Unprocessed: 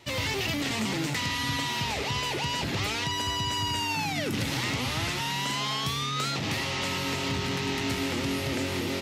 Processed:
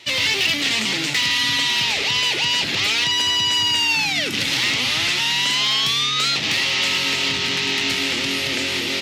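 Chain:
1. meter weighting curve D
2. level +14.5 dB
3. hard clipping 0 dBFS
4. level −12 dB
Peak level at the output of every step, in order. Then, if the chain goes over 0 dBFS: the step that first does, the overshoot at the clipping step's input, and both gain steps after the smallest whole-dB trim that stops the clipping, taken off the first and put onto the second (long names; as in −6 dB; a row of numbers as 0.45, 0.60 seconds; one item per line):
−9.0, +5.5, 0.0, −12.0 dBFS
step 2, 5.5 dB
step 2 +8.5 dB, step 4 −6 dB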